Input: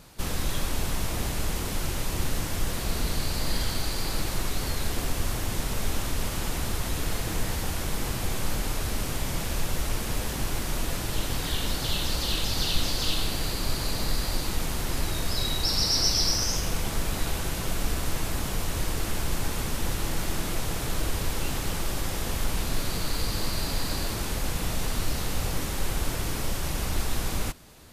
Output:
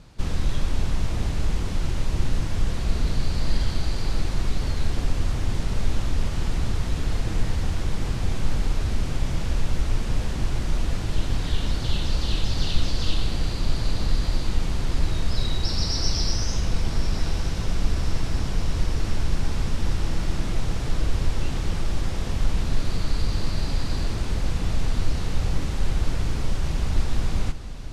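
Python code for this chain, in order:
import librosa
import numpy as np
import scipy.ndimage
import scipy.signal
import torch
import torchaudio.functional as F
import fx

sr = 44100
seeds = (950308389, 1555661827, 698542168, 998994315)

y = scipy.signal.sosfilt(scipy.signal.butter(2, 6300.0, 'lowpass', fs=sr, output='sos'), x)
y = fx.low_shelf(y, sr, hz=220.0, db=10.0)
y = fx.echo_diffused(y, sr, ms=1098, feedback_pct=74, wet_db=-14.0)
y = y * 10.0 ** (-3.0 / 20.0)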